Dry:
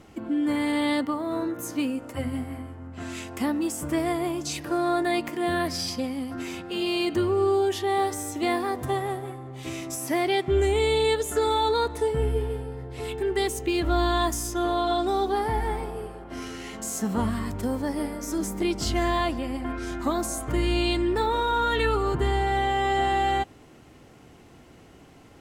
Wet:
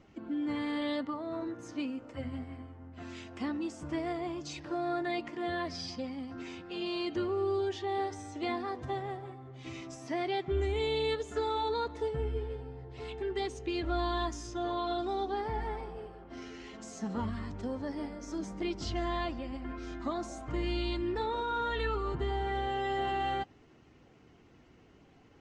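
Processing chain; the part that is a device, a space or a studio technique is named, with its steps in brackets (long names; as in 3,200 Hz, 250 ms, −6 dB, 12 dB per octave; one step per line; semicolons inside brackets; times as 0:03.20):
clip after many re-uploads (low-pass filter 6,200 Hz 24 dB per octave; spectral magnitudes quantised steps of 15 dB)
high-shelf EQ 11,000 Hz −4.5 dB
level −8.5 dB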